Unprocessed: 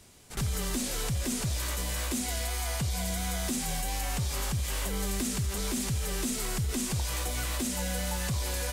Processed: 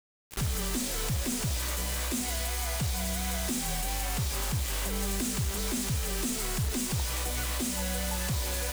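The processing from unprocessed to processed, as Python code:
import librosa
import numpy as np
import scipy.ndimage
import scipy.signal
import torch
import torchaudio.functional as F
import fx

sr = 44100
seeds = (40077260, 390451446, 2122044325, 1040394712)

y = np.sign(x) * np.maximum(np.abs(x) - 10.0 ** (-59.0 / 20.0), 0.0)
y = fx.quant_dither(y, sr, seeds[0], bits=6, dither='none')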